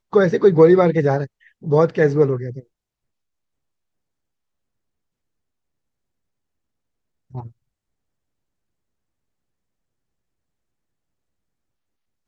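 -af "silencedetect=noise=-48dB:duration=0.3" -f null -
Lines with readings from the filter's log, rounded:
silence_start: 2.63
silence_end: 7.31 | silence_duration: 4.67
silence_start: 7.52
silence_end: 12.28 | silence_duration: 4.76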